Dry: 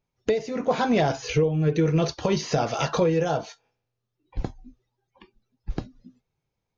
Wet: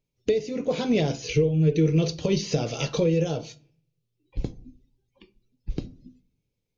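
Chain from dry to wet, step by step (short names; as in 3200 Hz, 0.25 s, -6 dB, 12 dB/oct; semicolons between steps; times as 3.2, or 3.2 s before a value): band shelf 1100 Hz -12 dB; wow and flutter 22 cents; shoebox room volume 450 m³, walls furnished, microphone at 0.35 m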